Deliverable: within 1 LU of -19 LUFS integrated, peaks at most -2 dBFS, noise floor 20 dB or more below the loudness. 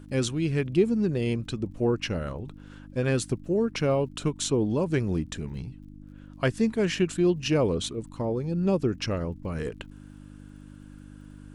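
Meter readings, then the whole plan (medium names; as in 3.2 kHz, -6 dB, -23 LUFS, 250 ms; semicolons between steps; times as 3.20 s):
tick rate 38 per s; hum 50 Hz; highest harmonic 300 Hz; hum level -45 dBFS; loudness -27.5 LUFS; peak level -11.0 dBFS; loudness target -19.0 LUFS
-> de-click; de-hum 50 Hz, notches 6; trim +8.5 dB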